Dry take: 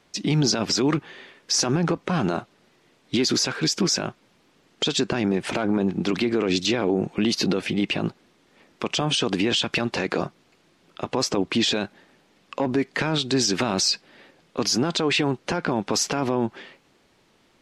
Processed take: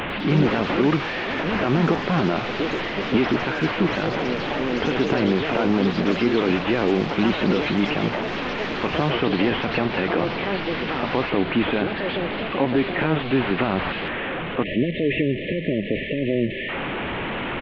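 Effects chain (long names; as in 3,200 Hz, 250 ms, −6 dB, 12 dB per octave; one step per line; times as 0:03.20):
linear delta modulator 16 kbit/s, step −24.5 dBFS
far-end echo of a speakerphone 130 ms, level −28 dB
time-frequency box erased 0:14.64–0:16.69, 650–1,700 Hz
delay with pitch and tempo change per echo 100 ms, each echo +4 semitones, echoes 3, each echo −6 dB
reversed playback
upward compression, threshold −27 dBFS
reversed playback
level +2 dB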